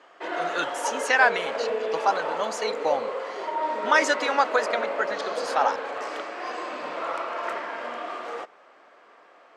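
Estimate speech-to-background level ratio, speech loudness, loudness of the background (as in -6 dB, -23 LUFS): 5.0 dB, -25.5 LUFS, -30.5 LUFS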